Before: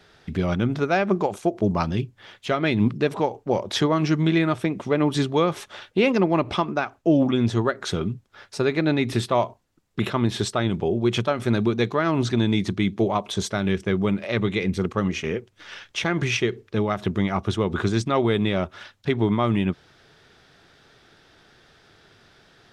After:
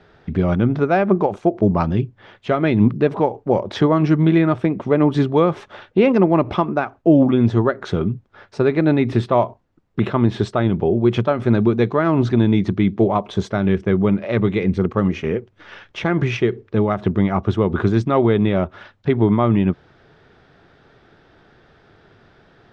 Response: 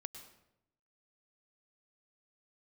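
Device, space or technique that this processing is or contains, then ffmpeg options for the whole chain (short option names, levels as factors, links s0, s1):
through cloth: -af "lowpass=6700,highshelf=f=2700:g=-17,volume=2"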